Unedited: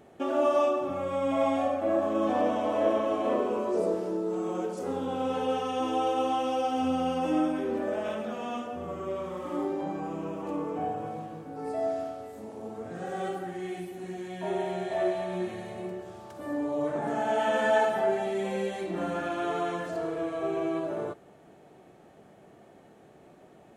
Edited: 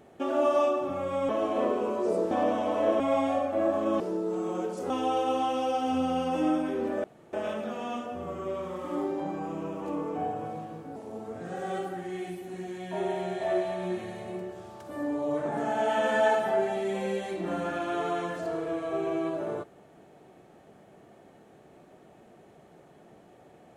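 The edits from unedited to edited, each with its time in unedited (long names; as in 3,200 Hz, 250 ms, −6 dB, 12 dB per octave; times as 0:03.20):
0:01.29–0:02.29: swap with 0:02.98–0:04.00
0:04.90–0:05.80: remove
0:07.94: splice in room tone 0.29 s
0:11.57–0:12.46: remove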